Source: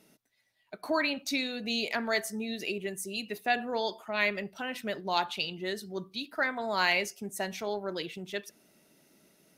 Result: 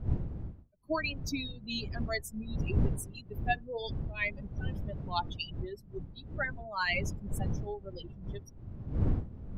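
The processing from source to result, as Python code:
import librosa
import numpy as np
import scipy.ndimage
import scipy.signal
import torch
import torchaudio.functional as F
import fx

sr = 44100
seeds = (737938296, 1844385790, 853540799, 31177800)

y = fx.bin_expand(x, sr, power=3.0)
y = fx.dmg_wind(y, sr, seeds[0], corner_hz=120.0, level_db=-36.0)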